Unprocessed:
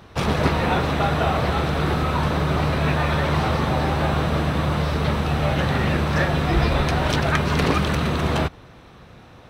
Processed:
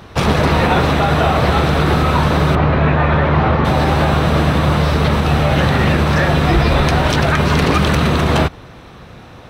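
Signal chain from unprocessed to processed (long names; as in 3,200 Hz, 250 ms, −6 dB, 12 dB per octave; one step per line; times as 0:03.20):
0:02.55–0:03.65: low-pass filter 2,300 Hz 12 dB per octave
boost into a limiter +11 dB
level −3 dB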